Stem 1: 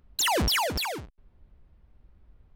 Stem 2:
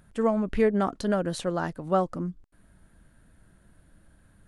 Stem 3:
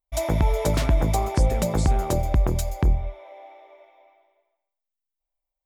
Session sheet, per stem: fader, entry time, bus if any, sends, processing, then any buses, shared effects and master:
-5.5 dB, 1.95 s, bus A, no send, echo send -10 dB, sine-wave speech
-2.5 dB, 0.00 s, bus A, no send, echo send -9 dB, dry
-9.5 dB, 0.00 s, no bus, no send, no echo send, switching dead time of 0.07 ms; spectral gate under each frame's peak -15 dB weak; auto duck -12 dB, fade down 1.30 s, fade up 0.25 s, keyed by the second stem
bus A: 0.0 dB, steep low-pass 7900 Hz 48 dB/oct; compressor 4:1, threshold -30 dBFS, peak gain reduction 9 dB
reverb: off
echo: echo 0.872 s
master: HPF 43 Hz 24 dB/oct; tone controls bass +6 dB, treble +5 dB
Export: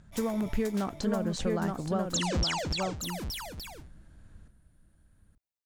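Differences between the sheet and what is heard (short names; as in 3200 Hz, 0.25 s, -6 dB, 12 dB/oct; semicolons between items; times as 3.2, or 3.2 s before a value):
stem 1: missing sine-wave speech; master: missing HPF 43 Hz 24 dB/oct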